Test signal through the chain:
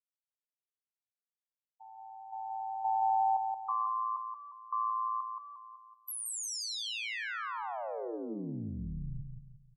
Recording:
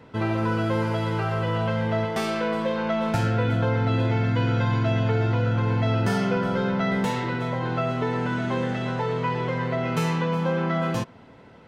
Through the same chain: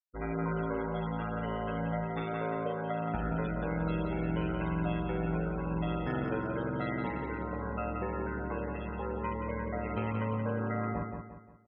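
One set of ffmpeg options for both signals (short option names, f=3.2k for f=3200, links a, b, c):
-af "afftfilt=real='re*gte(hypot(re,im),0.0562)':imag='im*gte(hypot(re,im),0.0562)':win_size=1024:overlap=0.75,aeval=exprs='val(0)*sin(2*PI*56*n/s)':c=same,aecho=1:1:176|352|528|704|880:0.562|0.219|0.0855|0.0334|0.013,volume=-7dB"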